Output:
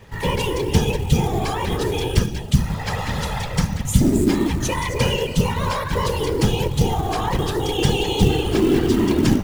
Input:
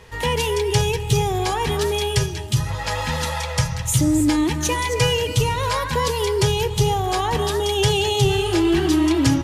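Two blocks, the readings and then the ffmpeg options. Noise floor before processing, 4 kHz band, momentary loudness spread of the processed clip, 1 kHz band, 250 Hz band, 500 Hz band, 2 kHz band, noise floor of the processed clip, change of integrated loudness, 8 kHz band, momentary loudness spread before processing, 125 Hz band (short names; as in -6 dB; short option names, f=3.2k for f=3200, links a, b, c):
-28 dBFS, -3.0 dB, 6 LU, -2.0 dB, +1.5 dB, -1.0 dB, -2.0 dB, -29 dBFS, -0.5 dB, -4.5 dB, 6 LU, +1.0 dB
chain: -af "afftfilt=real='hypot(re,im)*cos(2*PI*random(0))':imag='hypot(re,im)*sin(2*PI*random(1))':win_size=512:overlap=0.75,bass=f=250:g=5,treble=f=4k:g=-3,acrusher=bits=6:mode=log:mix=0:aa=0.000001,volume=4dB"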